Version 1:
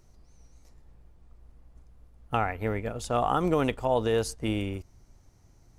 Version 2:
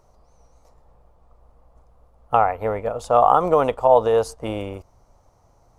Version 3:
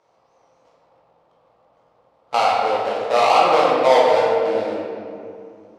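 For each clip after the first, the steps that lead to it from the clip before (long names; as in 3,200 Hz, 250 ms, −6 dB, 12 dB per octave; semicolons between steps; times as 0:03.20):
flat-topped bell 770 Hz +13 dB; level −1 dB
gap after every zero crossing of 0.19 ms; band-pass filter 310–5,200 Hz; convolution reverb RT60 2.5 s, pre-delay 6 ms, DRR −6 dB; level −4 dB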